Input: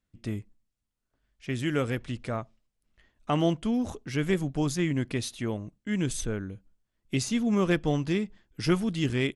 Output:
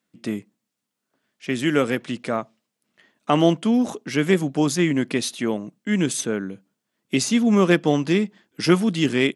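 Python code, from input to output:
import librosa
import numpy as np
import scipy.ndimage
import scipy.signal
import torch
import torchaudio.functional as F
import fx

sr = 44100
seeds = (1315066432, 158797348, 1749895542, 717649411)

y = scipy.signal.sosfilt(scipy.signal.butter(4, 170.0, 'highpass', fs=sr, output='sos'), x)
y = y * 10.0 ** (8.5 / 20.0)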